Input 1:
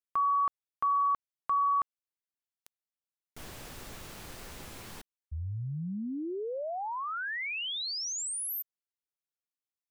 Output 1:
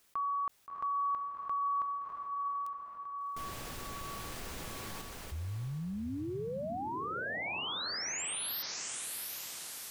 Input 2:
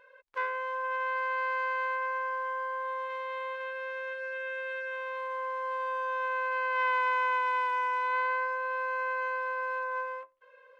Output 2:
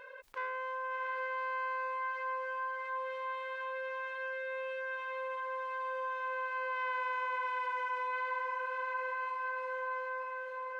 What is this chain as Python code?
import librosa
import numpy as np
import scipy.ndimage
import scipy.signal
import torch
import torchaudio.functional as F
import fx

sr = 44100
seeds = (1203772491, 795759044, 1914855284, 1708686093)

y = fx.echo_diffused(x, sr, ms=711, feedback_pct=40, wet_db=-6)
y = fx.env_flatten(y, sr, amount_pct=50)
y = y * librosa.db_to_amplitude(-9.0)